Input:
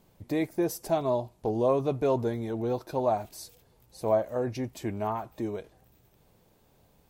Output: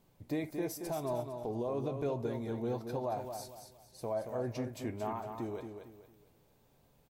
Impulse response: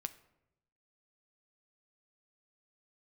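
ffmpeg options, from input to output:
-filter_complex "[0:a]alimiter=limit=-21.5dB:level=0:latency=1:release=139,aecho=1:1:227|454|681|908:0.447|0.147|0.0486|0.0161[a];[1:a]atrim=start_sample=2205,atrim=end_sample=3087[b];[a][b]afir=irnorm=-1:irlink=0,volume=-3.5dB"

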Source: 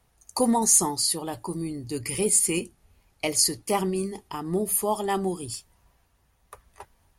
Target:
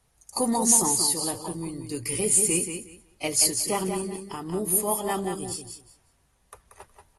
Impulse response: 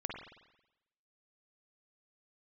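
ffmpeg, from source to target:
-af "highshelf=f=7.3k:g=8,asoftclip=type=tanh:threshold=-8.5dB,acrusher=bits=11:mix=0:aa=0.000001,aecho=1:1:183|366|549:0.447|0.0849|0.0161,volume=-3dB" -ar 32000 -c:a aac -b:a 32k

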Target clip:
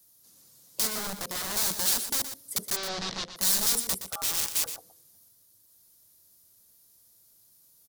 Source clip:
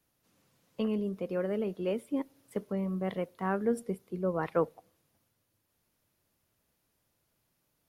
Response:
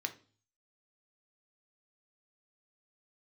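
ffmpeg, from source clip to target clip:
-filter_complex "[0:a]acrossover=split=100[a][b];[b]aeval=exprs='(mod(42.2*val(0)+1,2)-1)/42.2':c=same[c];[a][c]amix=inputs=2:normalize=0,asettb=1/sr,asplit=3[d][e][f];[d]atrim=end=0.874[g];[e]atrim=start=0.87:end=1.56,asetpts=PTS-STARTPTS,afade=t=in:d=0.004:c=qsin,afade=t=out:st=0.686:d=0.004:c=qsin,acrossover=split=2800[h][i];[i]acompressor=threshold=-46dB:ratio=4:attack=1:release=60[j];[h][j]amix=inputs=2:normalize=0[k];[f]atrim=start=1.556[l];[g][k]acrossfade=d=0.004:c1=hsin:c2=qsin[m];[m][l]acrossfade=d=0.004:c1=qsin:c2=hsin,aexciter=amount=4:drive=8:freq=3.8k,asplit=3[n][o][p];[n]afade=t=out:st=2.75:d=0.02[q];[o]lowpass=f=4.9k:w=0.5412,lowpass=f=4.9k:w=1.3066,afade=t=in:st=2.75:d=0.02,afade=t=out:st=3.35:d=0.02[r];[p]afade=t=in:st=3.35:d=0.02[s];[q][r][s]amix=inputs=3:normalize=0,asettb=1/sr,asplit=3[t][u][v];[t]atrim=end=4.074[w];[u]atrim=start=4.07:end=4.66,asetpts=PTS-STARTPTS,afade=t=in:d=0.004:c=qsin,afade=t=out:st=0.586:d=0.004:c=qsin,aeval=exprs='val(0)*sin(2*PI*1000*n/s)':c=same[x];[v]atrim=start=4.656[y];[w][x]acrossfade=d=0.004:c1=hsin:c2=qsin[z];[z][y]acrossfade=d=0.004:c1=qsin:c2=hsin,asplit=2[aa][ab];[ab]aecho=0:1:120:0.299[ac];[aa][ac]amix=inputs=2:normalize=0,volume=1dB"

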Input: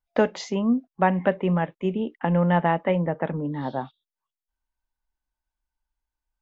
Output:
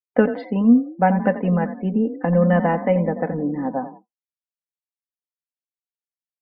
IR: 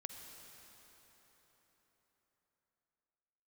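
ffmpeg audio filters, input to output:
-filter_complex "[0:a]lowpass=1.8k,asplit=5[a][b][c][d][e];[b]adelay=86,afreqshift=32,volume=-12dB[f];[c]adelay=172,afreqshift=64,volume=-20.2dB[g];[d]adelay=258,afreqshift=96,volume=-28.4dB[h];[e]adelay=344,afreqshift=128,volume=-36.5dB[i];[a][f][g][h][i]amix=inputs=5:normalize=0,agate=range=-33dB:threshold=-41dB:ratio=3:detection=peak,equalizer=f=1.1k:w=1.7:g=-5.5,aecho=1:1:4:0.73,afftdn=nr=35:nf=-46,volume=3dB"

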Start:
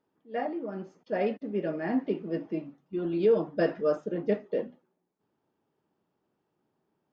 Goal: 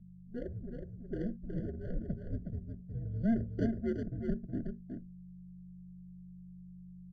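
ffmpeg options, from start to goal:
-af "equalizer=f=4.5k:w=0.88:g=-6.5,adynamicsmooth=sensitivity=0.5:basefreq=520,aexciter=amount=11.3:drive=8.4:freq=4.6k,aeval=exprs='(tanh(10*val(0)+0.65)-tanh(0.65))/10':c=same,aeval=exprs='val(0)+0.00355*(sin(2*PI*50*n/s)+sin(2*PI*2*50*n/s)/2+sin(2*PI*3*50*n/s)/3+sin(2*PI*4*50*n/s)/4+sin(2*PI*5*50*n/s)/5)':c=same,afreqshift=-230,aecho=1:1:367:0.501,afftfilt=real='re*eq(mod(floor(b*sr/1024/700),2),0)':imag='im*eq(mod(floor(b*sr/1024/700),2),0)':win_size=1024:overlap=0.75,volume=-3dB"

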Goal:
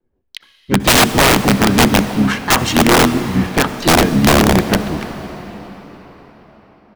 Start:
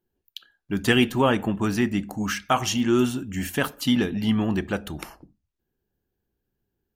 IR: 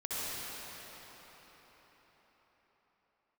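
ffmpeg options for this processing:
-filter_complex "[0:a]adynamicequalizer=threshold=0.0178:dfrequency=200:dqfactor=1.8:tfrequency=200:tqfactor=1.8:attack=5:release=100:ratio=0.375:range=2.5:mode=boostabove:tftype=bell,adynamicsmooth=sensitivity=2.5:basefreq=1.7k,asplit=3[a][b][c];[b]asetrate=29433,aresample=44100,atempo=1.49831,volume=-8dB[d];[c]asetrate=58866,aresample=44100,atempo=0.749154,volume=-7dB[e];[a][d][e]amix=inputs=3:normalize=0,aeval=exprs='(mod(4.22*val(0)+1,2)-1)/4.22':c=same,asplit=2[f][g];[1:a]atrim=start_sample=2205[h];[g][h]afir=irnorm=-1:irlink=0,volume=-16dB[i];[f][i]amix=inputs=2:normalize=0,volume=7.5dB"

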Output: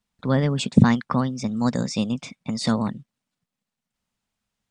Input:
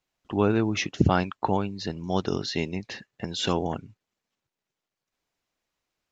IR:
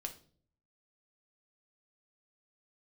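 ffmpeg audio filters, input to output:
-af "lowshelf=f=210:t=q:w=3:g=6,asetrate=57330,aresample=44100"

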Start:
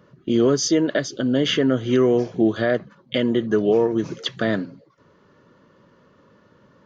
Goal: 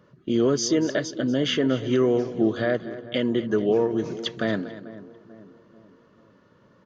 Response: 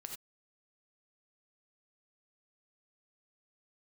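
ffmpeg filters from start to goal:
-filter_complex "[0:a]asplit=2[a][b];[b]adelay=441,lowpass=f=1.1k:p=1,volume=-16dB,asplit=2[c][d];[d]adelay=441,lowpass=f=1.1k:p=1,volume=0.52,asplit=2[e][f];[f]adelay=441,lowpass=f=1.1k:p=1,volume=0.52,asplit=2[g][h];[h]adelay=441,lowpass=f=1.1k:p=1,volume=0.52,asplit=2[i][j];[j]adelay=441,lowpass=f=1.1k:p=1,volume=0.52[k];[c][e][g][i][k]amix=inputs=5:normalize=0[l];[a][l]amix=inputs=2:normalize=0,aresample=22050,aresample=44100,asplit=2[m][n];[n]aecho=0:1:239:0.178[o];[m][o]amix=inputs=2:normalize=0,volume=-3.5dB"

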